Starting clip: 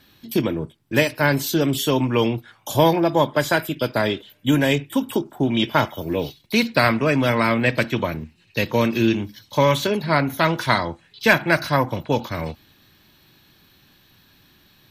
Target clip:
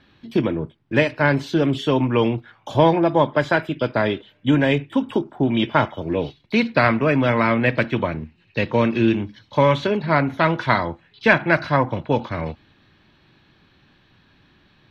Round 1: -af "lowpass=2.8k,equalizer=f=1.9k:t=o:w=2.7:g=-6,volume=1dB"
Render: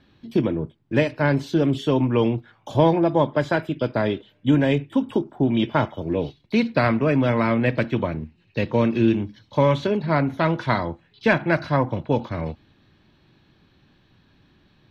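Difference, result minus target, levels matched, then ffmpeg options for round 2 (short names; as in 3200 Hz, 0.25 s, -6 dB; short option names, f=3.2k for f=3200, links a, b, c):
2000 Hz band -4.0 dB
-af "lowpass=2.8k,volume=1dB"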